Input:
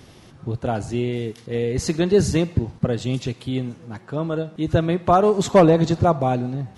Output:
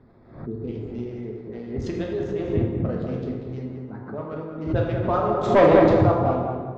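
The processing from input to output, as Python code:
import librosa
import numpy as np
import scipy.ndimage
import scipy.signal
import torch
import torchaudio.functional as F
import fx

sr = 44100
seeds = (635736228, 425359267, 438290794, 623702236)

p1 = fx.wiener(x, sr, points=15)
p2 = fx.spec_repair(p1, sr, seeds[0], start_s=0.32, length_s=0.63, low_hz=500.0, high_hz=1900.0, source='both')
p3 = p2 + fx.echo_filtered(p2, sr, ms=194, feedback_pct=35, hz=1900.0, wet_db=-4.0, dry=0)
p4 = fx.hpss(p3, sr, part='harmonic', gain_db=-12)
p5 = fx.level_steps(p4, sr, step_db=13, at=(1.91, 2.43))
p6 = fx.leveller(p5, sr, passes=2, at=(5.5, 6.03))
p7 = fx.air_absorb(p6, sr, metres=200.0)
p8 = fx.rev_plate(p7, sr, seeds[1], rt60_s=1.2, hf_ratio=0.75, predelay_ms=0, drr_db=-1.5)
p9 = fx.pre_swell(p8, sr, db_per_s=100.0)
y = p9 * librosa.db_to_amplitude(-4.0)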